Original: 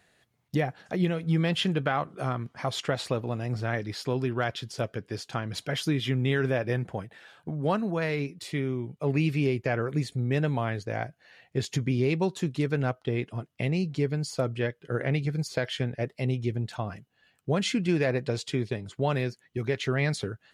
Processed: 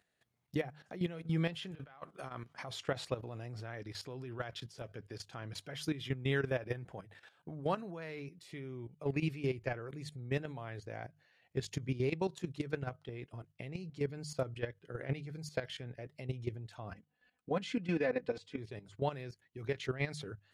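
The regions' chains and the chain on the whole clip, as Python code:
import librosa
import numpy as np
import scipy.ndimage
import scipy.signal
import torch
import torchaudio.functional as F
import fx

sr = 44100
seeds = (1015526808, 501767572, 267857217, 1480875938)

y = fx.chain(x, sr, fx.low_shelf(hz=400.0, db=-10.0),
    fx.over_compress(threshold_db=-36.0, ratio=-0.5), at=(1.71, 2.62))
y = fx.chain(y, sr, fx.lowpass(hz=2500.0, slope=6),
    fx.comb(ms=4.0, depth=0.82), at=(16.93, 18.58))
y = fx.hum_notches(y, sr, base_hz=50, count=3)
y = fx.dynamic_eq(y, sr, hz=220.0, q=4.0, threshold_db=-45.0, ratio=4.0, max_db=-7)
y = fx.level_steps(y, sr, step_db=13)
y = F.gain(torch.from_numpy(y), -5.0).numpy()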